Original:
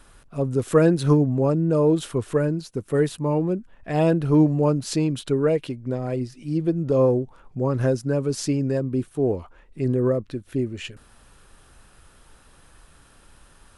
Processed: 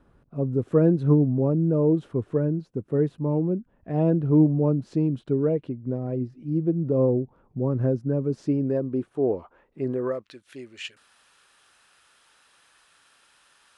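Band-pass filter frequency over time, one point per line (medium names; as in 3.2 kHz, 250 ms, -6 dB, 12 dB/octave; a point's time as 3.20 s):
band-pass filter, Q 0.56
8.21 s 200 Hz
9.06 s 580 Hz
9.83 s 580 Hz
10.32 s 3.2 kHz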